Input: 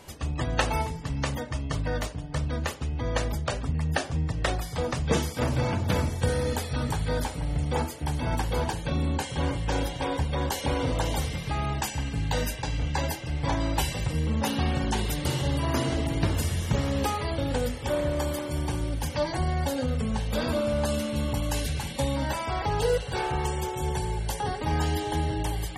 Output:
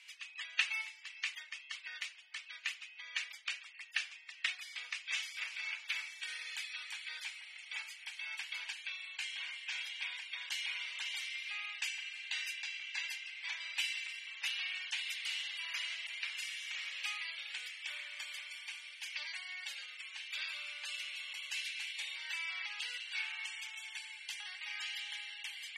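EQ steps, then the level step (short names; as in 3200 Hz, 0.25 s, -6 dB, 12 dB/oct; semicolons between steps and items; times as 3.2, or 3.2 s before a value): ladder high-pass 2100 Hz, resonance 60%; air absorption 62 m; +4.5 dB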